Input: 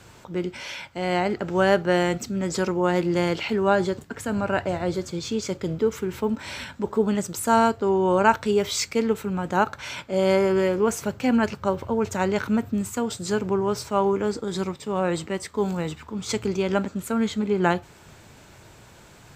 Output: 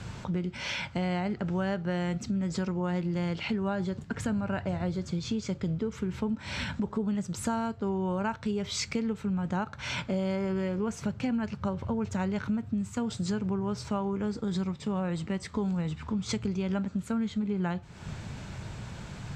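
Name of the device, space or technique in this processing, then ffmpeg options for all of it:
jukebox: -af "lowpass=6600,lowshelf=f=250:t=q:w=1.5:g=7,acompressor=threshold=0.0224:ratio=6,volume=1.58"

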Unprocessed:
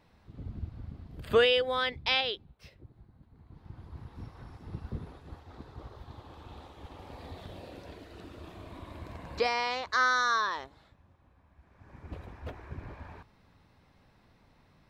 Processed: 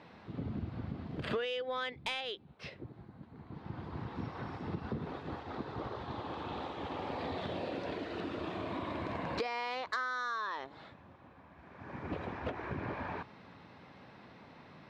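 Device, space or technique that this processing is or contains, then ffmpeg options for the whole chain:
AM radio: -af "highpass=160,lowpass=3700,acompressor=threshold=0.00631:ratio=10,asoftclip=type=tanh:threshold=0.0188,volume=3.55"

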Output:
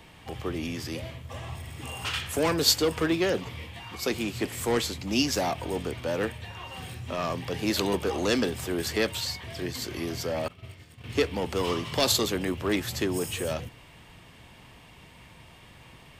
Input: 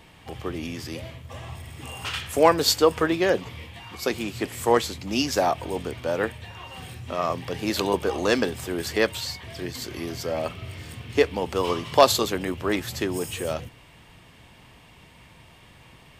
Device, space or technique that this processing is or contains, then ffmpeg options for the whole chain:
one-band saturation: -filter_complex "[0:a]acrossover=split=340|2300[s0][s1][s2];[s1]asoftclip=type=tanh:threshold=0.0447[s3];[s0][s3][s2]amix=inputs=3:normalize=0,asettb=1/sr,asplit=3[s4][s5][s6];[s4]atrim=end=10.484[s7];[s5]atrim=start=10.48:end=11.04,asetpts=PTS-STARTPTS,afade=t=in:d=0.004:c=qsin,afade=t=out:st=0.556:d=0.004:c=qsin,agate=range=0.0224:threshold=0.0355:ratio=3:detection=peak[s8];[s6]atrim=start=11.036[s9];[s7][s8]acrossfade=d=0.004:c1=hsin:c2=qsin[s10];[s10][s9]acrossfade=d=0.004:c1=qsin:c2=hsin"

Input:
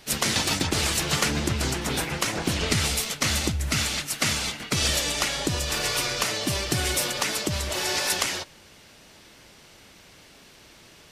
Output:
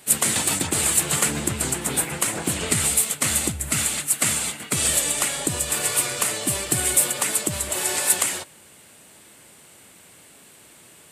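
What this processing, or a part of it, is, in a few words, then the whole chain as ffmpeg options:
budget condenser microphone: -af "highpass=97,highshelf=f=6800:t=q:w=3:g=7"

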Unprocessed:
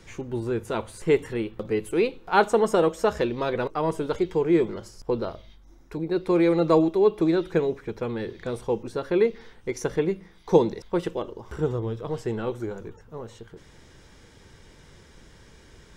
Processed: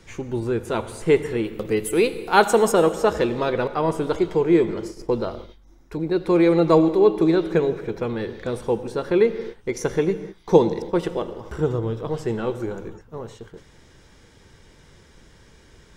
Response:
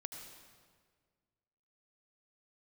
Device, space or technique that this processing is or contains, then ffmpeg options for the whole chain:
keyed gated reverb: -filter_complex "[0:a]asettb=1/sr,asplit=3[s0][s1][s2];[s0]atrim=end=1.444[s3];[s1]atrim=start=1.44:end=2.72,asetpts=PTS-STARTPTS,afade=t=in:d=0.004:c=qsin,afade=t=out:st=1.276:d=0.004:c=qsin,aemphasis=mode=production:type=50kf[s4];[s2]atrim=start=2.716[s5];[s3][s4]acrossfade=d=0.004:c1=hsin:c2=qsin[s6];[s6][s5]acrossfade=d=0.004:c1=qsin:c2=hsin,asplit=3[s7][s8][s9];[1:a]atrim=start_sample=2205[s10];[s8][s10]afir=irnorm=-1:irlink=0[s11];[s9]apad=whole_len=703956[s12];[s11][s12]sidechaingate=range=0.0224:threshold=0.00631:ratio=16:detection=peak,volume=0.794[s13];[s7][s13]amix=inputs=2:normalize=0"

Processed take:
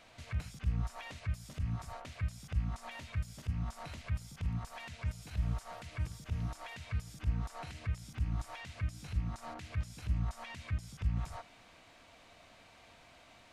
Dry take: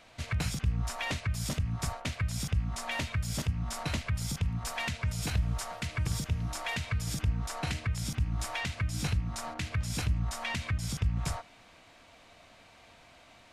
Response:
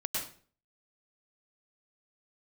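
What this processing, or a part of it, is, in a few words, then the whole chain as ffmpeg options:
de-esser from a sidechain: -filter_complex "[0:a]asplit=2[s0][s1];[s1]highpass=5100,apad=whole_len=596389[s2];[s0][s2]sidechaincompress=threshold=0.00112:ratio=3:attack=2.4:release=28,volume=0.75"

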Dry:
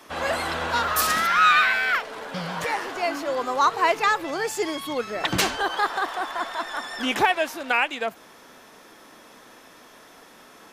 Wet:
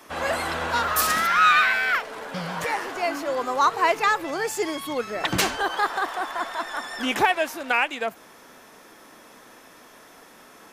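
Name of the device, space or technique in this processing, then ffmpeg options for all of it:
exciter from parts: -filter_complex "[0:a]asplit=2[s0][s1];[s1]highpass=f=4400:p=1,asoftclip=type=tanh:threshold=0.0473,highpass=f=2600:w=0.5412,highpass=f=2600:w=1.3066,volume=0.355[s2];[s0][s2]amix=inputs=2:normalize=0"

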